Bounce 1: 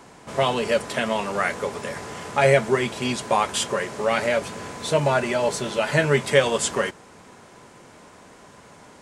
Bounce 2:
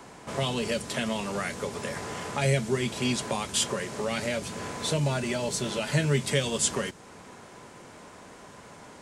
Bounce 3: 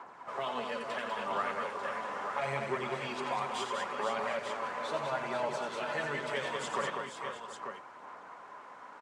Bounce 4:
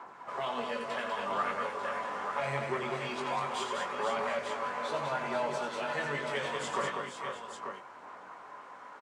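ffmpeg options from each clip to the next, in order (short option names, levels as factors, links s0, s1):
-filter_complex "[0:a]acrossover=split=300|3000[s0][s1][s2];[s1]acompressor=threshold=0.0224:ratio=4[s3];[s0][s3][s2]amix=inputs=3:normalize=0"
-filter_complex "[0:a]bandpass=f=1100:t=q:w=1.8:csg=0,aphaser=in_gain=1:out_gain=1:delay=4.1:decay=0.43:speed=0.74:type=sinusoidal,asplit=2[s0][s1];[s1]aecho=0:1:88|196|469|497|717|892:0.422|0.562|0.316|0.355|0.178|0.422[s2];[s0][s2]amix=inputs=2:normalize=0"
-filter_complex "[0:a]asplit=2[s0][s1];[s1]adelay=21,volume=0.531[s2];[s0][s2]amix=inputs=2:normalize=0"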